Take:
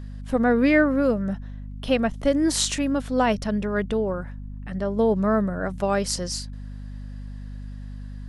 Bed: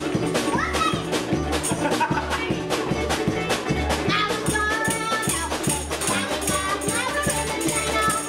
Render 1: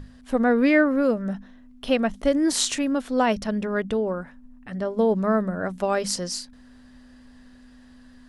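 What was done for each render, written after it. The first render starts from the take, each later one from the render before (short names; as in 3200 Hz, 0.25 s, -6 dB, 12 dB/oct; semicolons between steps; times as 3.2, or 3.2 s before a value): notches 50/100/150/200 Hz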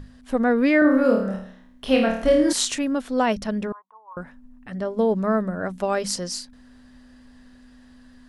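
0.79–2.53 flutter echo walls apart 4.6 m, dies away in 0.57 s; 3.72–4.17 Butterworth band-pass 1000 Hz, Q 5.1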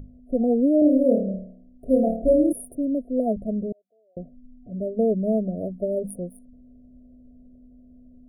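Wiener smoothing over 25 samples; FFT band-reject 730–9100 Hz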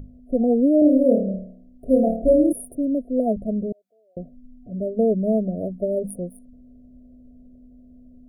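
gain +2 dB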